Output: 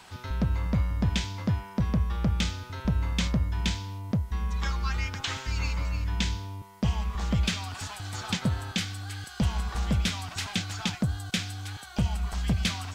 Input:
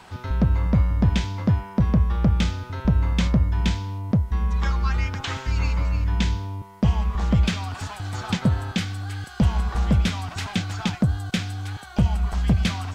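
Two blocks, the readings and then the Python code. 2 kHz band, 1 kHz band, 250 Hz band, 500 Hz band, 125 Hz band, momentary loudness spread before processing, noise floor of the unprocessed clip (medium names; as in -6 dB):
-2.5 dB, -5.0 dB, -7.0 dB, -6.5 dB, -7.0 dB, 9 LU, -41 dBFS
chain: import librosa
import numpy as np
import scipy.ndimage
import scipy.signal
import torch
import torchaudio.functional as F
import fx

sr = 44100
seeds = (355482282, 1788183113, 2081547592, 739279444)

y = fx.high_shelf(x, sr, hz=2100.0, db=9.5)
y = y * librosa.db_to_amplitude(-7.0)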